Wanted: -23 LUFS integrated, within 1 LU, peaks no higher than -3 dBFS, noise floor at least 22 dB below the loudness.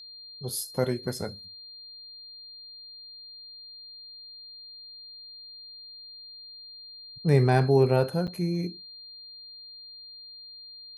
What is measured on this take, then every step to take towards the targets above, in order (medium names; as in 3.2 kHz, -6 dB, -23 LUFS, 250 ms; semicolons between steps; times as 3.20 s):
dropouts 1; longest dropout 7.9 ms; steady tone 4.2 kHz; tone level -43 dBFS; loudness -26.0 LUFS; peak level -8.5 dBFS; loudness target -23.0 LUFS
-> interpolate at 8.27 s, 7.9 ms; band-stop 4.2 kHz, Q 30; trim +3 dB